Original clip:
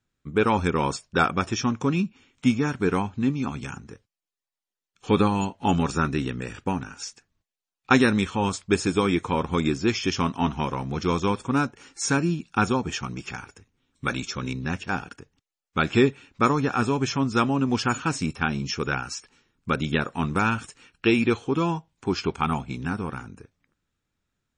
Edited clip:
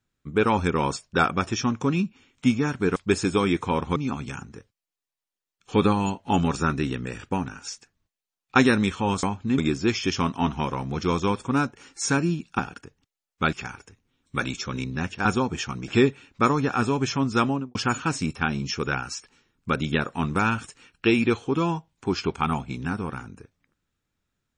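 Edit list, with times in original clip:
2.96–3.31 s: swap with 8.58–9.58 s
12.59–13.22 s: swap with 14.94–15.88 s
17.46–17.75 s: studio fade out

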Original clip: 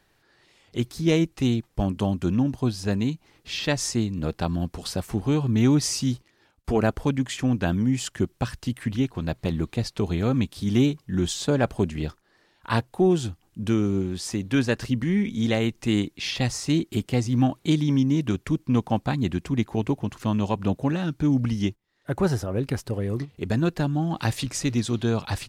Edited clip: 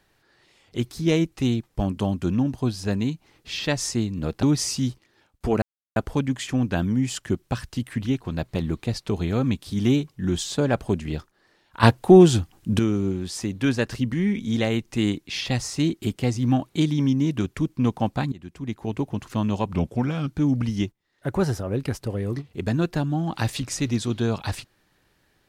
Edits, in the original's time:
4.43–5.67 s: delete
6.86 s: insert silence 0.34 s
12.73–13.69 s: gain +8.5 dB
19.22–20.08 s: fade in, from -21 dB
20.62–21.10 s: speed 88%

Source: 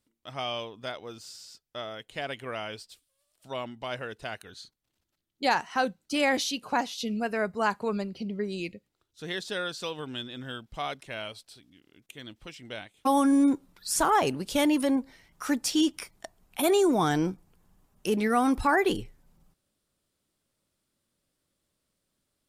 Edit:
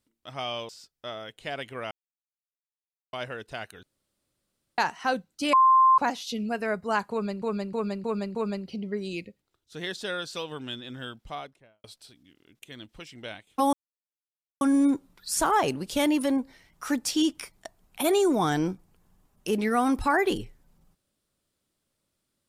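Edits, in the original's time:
0.69–1.40 s: delete
2.62–3.84 s: mute
4.54–5.49 s: room tone
6.24–6.69 s: bleep 1.05 kHz -14.5 dBFS
7.82–8.13 s: loop, 5 plays
10.58–11.31 s: studio fade out
13.20 s: insert silence 0.88 s

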